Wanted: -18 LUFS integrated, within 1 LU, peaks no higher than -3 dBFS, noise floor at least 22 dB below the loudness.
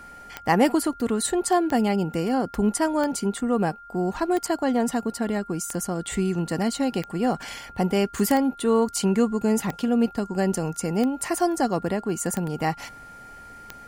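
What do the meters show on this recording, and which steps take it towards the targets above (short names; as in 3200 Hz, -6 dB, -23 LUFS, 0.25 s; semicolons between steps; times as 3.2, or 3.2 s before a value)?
clicks 11; steady tone 1400 Hz; tone level -42 dBFS; loudness -24.5 LUFS; peak -6.0 dBFS; loudness target -18.0 LUFS
-> de-click; notch 1400 Hz, Q 30; gain +6.5 dB; limiter -3 dBFS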